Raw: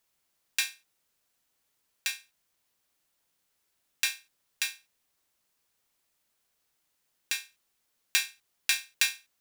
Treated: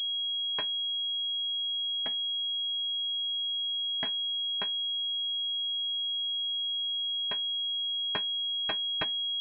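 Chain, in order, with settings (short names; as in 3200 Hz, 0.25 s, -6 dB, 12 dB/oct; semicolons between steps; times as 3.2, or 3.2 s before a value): trilling pitch shifter +3.5 st, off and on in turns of 0.135 s; spectral gate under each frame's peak -30 dB strong; transient shaper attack +9 dB, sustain -8 dB; air absorption 81 m; pulse-width modulation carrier 3300 Hz; gain -6 dB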